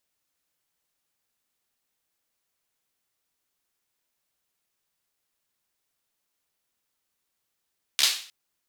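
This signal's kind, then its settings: hand clap length 0.31 s, apart 14 ms, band 3700 Hz, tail 0.45 s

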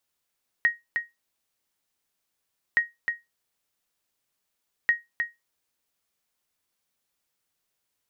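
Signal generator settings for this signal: sonar ping 1880 Hz, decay 0.19 s, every 2.12 s, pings 3, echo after 0.31 s, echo -6 dB -12.5 dBFS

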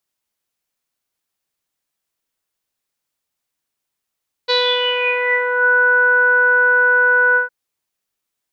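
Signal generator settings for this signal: synth note saw B4 24 dB/oct, low-pass 1500 Hz, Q 9.6, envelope 1.5 oct, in 1.16 s, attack 21 ms, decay 0.37 s, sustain -4 dB, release 0.13 s, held 2.88 s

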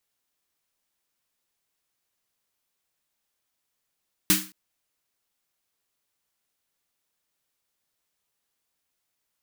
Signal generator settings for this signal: snare drum length 0.22 s, tones 190 Hz, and 310 Hz, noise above 1200 Hz, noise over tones 6 dB, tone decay 0.34 s, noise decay 0.34 s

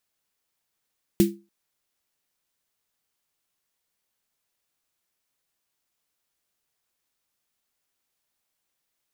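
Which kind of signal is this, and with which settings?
snare drum length 0.29 s, tones 200 Hz, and 340 Hz, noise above 1900 Hz, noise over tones -12 dB, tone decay 0.29 s, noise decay 0.20 s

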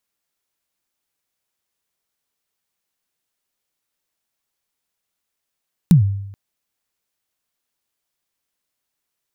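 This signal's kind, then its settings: kick drum length 0.43 s, from 190 Hz, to 99 Hz, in 0.115 s, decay 0.84 s, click on, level -4.5 dB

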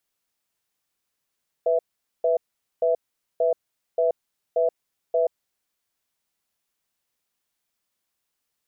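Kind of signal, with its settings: cadence 495 Hz, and 659 Hz, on 0.13 s, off 0.45 s, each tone -20.5 dBFS 3.79 s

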